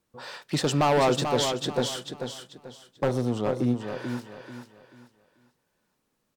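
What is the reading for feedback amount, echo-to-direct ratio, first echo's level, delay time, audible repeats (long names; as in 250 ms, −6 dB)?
31%, −6.5 dB, −7.0 dB, 438 ms, 3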